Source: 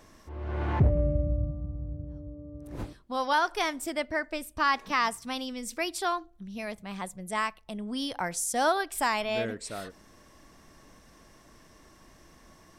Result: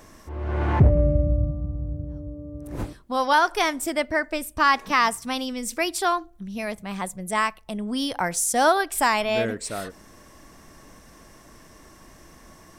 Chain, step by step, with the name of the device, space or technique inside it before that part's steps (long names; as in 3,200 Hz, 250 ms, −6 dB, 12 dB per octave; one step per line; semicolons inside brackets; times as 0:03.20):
exciter from parts (in parallel at −6 dB: high-pass filter 4,600 Hz 12 dB per octave + soft clipping −40 dBFS, distortion −6 dB + high-pass filter 2,100 Hz)
on the sum: level +6.5 dB